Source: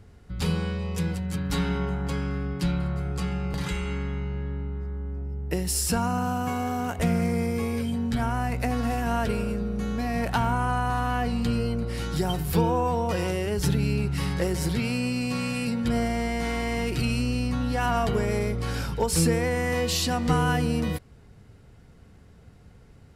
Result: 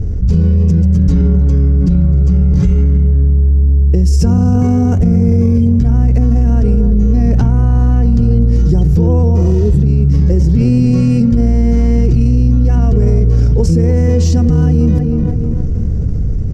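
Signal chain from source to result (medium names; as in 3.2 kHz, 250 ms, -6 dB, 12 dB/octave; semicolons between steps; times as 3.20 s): FFT filter 460 Hz 0 dB, 860 Hz -12 dB, 3.9 kHz -9 dB, 6 kHz +8 dB, 9.5 kHz -6 dB, 14 kHz -4 dB; spectral replace 13.15–13.68 s, 520–7100 Hz both; tape echo 436 ms, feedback 32%, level -11.5 dB, low-pass 2 kHz; tempo 1.4×; RIAA curve playback; level rider gain up to 8 dB; peak limiter -8 dBFS, peak gain reduction 6.5 dB; level flattener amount 70%; trim +3 dB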